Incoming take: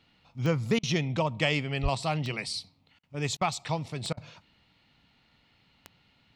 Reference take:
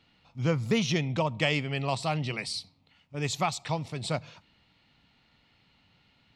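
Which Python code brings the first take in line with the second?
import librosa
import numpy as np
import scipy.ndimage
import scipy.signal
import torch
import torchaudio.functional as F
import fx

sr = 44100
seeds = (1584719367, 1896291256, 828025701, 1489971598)

y = fx.fix_declick_ar(x, sr, threshold=10.0)
y = fx.highpass(y, sr, hz=140.0, slope=24, at=(1.82, 1.94), fade=0.02)
y = fx.fix_interpolate(y, sr, at_s=(0.79, 2.99, 3.37, 4.13), length_ms=41.0)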